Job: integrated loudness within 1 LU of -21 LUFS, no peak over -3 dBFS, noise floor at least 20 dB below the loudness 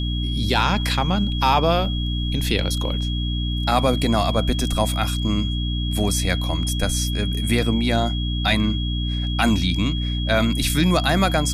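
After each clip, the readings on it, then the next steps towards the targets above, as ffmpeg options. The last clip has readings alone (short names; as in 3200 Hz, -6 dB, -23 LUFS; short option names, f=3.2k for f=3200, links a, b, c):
hum 60 Hz; harmonics up to 300 Hz; hum level -21 dBFS; steady tone 3300 Hz; tone level -30 dBFS; loudness -21.5 LUFS; peak -4.5 dBFS; loudness target -21.0 LUFS
-> -af "bandreject=f=60:t=h:w=4,bandreject=f=120:t=h:w=4,bandreject=f=180:t=h:w=4,bandreject=f=240:t=h:w=4,bandreject=f=300:t=h:w=4"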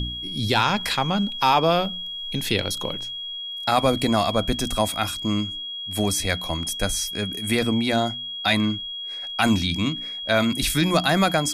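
hum none; steady tone 3300 Hz; tone level -30 dBFS
-> -af "bandreject=f=3.3k:w=30"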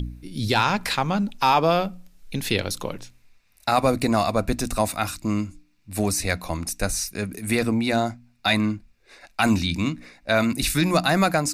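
steady tone none; loudness -23.5 LUFS; peak -6.0 dBFS; loudness target -21.0 LUFS
-> -af "volume=2.5dB"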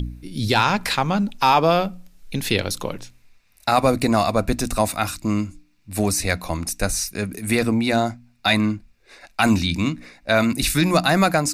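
loudness -21.0 LUFS; peak -3.5 dBFS; noise floor -59 dBFS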